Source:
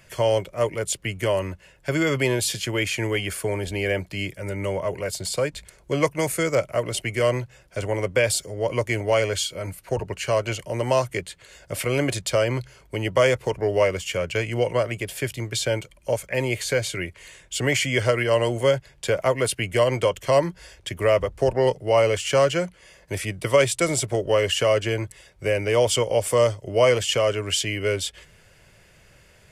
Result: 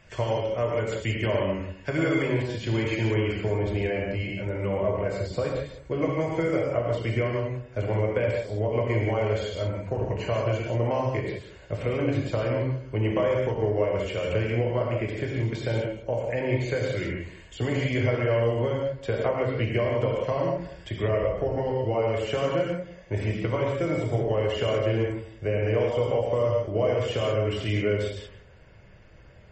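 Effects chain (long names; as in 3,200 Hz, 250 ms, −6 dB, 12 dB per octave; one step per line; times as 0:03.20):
de-essing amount 55%
low-pass filter 2,800 Hz 6 dB per octave, from 0:02.22 1,100 Hz
low-shelf EQ 78 Hz +3.5 dB
downward compressor 8 to 1, threshold −23 dBFS, peak gain reduction 9.5 dB
feedback echo with a low-pass in the loop 186 ms, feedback 17%, low-pass 1,100 Hz, level −15 dB
reverb whose tail is shaped and stops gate 210 ms flat, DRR −2 dB
level −1 dB
MP3 32 kbit/s 44,100 Hz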